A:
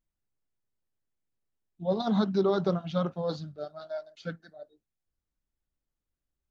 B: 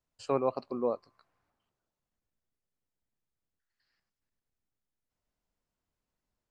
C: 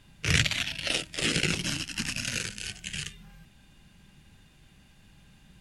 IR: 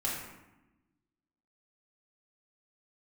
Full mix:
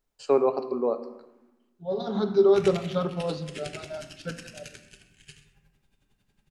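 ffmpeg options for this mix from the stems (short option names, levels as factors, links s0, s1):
-filter_complex "[0:a]volume=1,asplit=2[s0][s1];[s1]volume=0.237[s2];[1:a]highpass=f=160:w=0.5412,highpass=f=160:w=1.3066,volume=1.26,asplit=3[s3][s4][s5];[s4]volume=0.237[s6];[2:a]aeval=exprs='val(0)*pow(10,-22*(0.5-0.5*cos(2*PI*11*n/s))/20)':c=same,adelay=2300,volume=0.237,asplit=3[s7][s8][s9];[s8]volume=0.376[s10];[s9]volume=0.168[s11];[s5]apad=whole_len=286854[s12];[s0][s12]sidechaincompress=threshold=0.00794:ratio=8:attack=16:release=1320[s13];[3:a]atrim=start_sample=2205[s14];[s2][s6][s10]amix=inputs=3:normalize=0[s15];[s15][s14]afir=irnorm=-1:irlink=0[s16];[s11]aecho=0:1:130:1[s17];[s13][s3][s7][s16][s17]amix=inputs=5:normalize=0,equalizer=f=400:t=o:w=0.26:g=9"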